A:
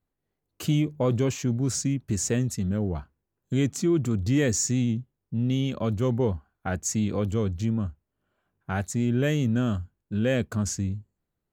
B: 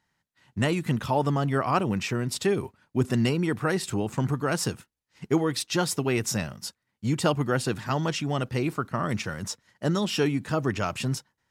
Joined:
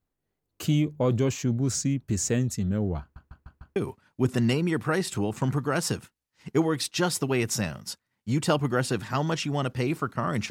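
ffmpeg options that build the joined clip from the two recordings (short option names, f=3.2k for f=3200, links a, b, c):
-filter_complex "[0:a]apad=whole_dur=10.5,atrim=end=10.5,asplit=5[a][b][c][d][e];[a]atrim=end=3.162[f];[b]atrim=start=3.008:end=3.162[g];[c]atrim=start=3.008:end=3.162[h];[d]atrim=start=3.008:end=3.162[i];[e]atrim=start=3.008:end=3.162[j];[1:a]atrim=start=2.518:end=9.26[k];[f][g]acrossfade=d=0.004:c1=hsin:c2=hsin[l];[l][h]acrossfade=d=0.004:c1=hsin:c2=hsin[m];[m][i]acrossfade=d=0.004:c1=hsin:c2=hsin[n];[n][j]acrossfade=d=0.004:c1=hsin:c2=hsin[o];[o][k]acrossfade=d=0.004:c1=hsin:c2=hsin"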